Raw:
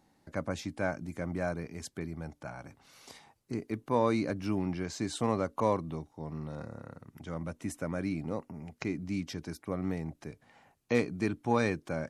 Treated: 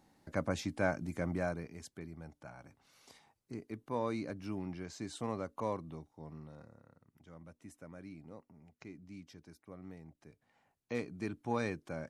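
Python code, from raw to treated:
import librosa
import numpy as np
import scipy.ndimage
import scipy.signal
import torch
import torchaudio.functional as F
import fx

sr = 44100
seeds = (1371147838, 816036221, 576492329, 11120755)

y = fx.gain(x, sr, db=fx.line((1.27, 0.0), (1.9, -8.5), (6.27, -8.5), (6.83, -16.0), (10.05, -16.0), (11.42, -7.0)))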